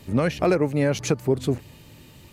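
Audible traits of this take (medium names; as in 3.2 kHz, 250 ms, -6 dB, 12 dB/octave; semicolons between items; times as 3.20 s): noise floor -49 dBFS; spectral tilt -6.5 dB/octave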